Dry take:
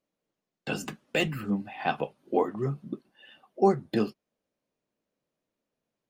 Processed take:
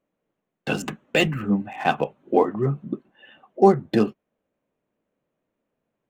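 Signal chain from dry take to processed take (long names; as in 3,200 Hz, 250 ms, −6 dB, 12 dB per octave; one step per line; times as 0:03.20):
adaptive Wiener filter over 9 samples
level +7 dB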